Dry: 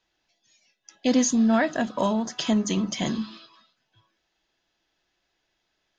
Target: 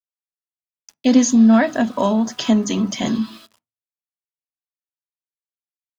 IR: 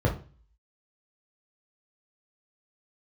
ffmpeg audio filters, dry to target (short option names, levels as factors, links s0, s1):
-filter_complex "[0:a]aeval=exprs='val(0)*gte(abs(val(0)),0.00376)':c=same,asplit=2[s0][s1];[1:a]atrim=start_sample=2205,asetrate=83790,aresample=44100,lowshelf=f=68:g=-9[s2];[s1][s2]afir=irnorm=-1:irlink=0,volume=0.0794[s3];[s0][s3]amix=inputs=2:normalize=0,volume=1.5"